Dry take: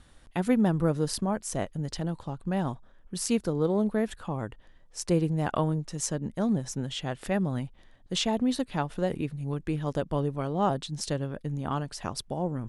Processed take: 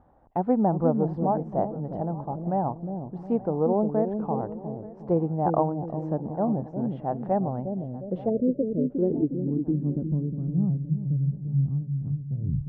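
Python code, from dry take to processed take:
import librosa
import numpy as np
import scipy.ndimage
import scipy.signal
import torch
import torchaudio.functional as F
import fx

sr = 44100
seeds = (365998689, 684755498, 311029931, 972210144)

y = fx.tape_stop_end(x, sr, length_s=0.39)
y = fx.highpass(y, sr, hz=99.0, slope=6)
y = fx.peak_eq(y, sr, hz=9800.0, db=-11.0, octaves=2.8)
y = fx.echo_wet_lowpass(y, sr, ms=358, feedback_pct=40, hz=410.0, wet_db=-3.5)
y = fx.filter_sweep_lowpass(y, sr, from_hz=800.0, to_hz=140.0, start_s=7.5, end_s=11.03, q=3.4)
y = y + 10.0 ** (-19.5 / 20.0) * np.pad(y, (int(879 * sr / 1000.0), 0))[:len(y)]
y = fx.spec_erase(y, sr, start_s=8.3, length_s=0.6, low_hz=660.0, high_hz=9000.0)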